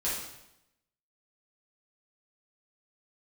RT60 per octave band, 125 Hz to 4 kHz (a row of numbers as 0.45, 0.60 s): 0.90, 0.90, 0.85, 0.85, 0.80, 0.80 s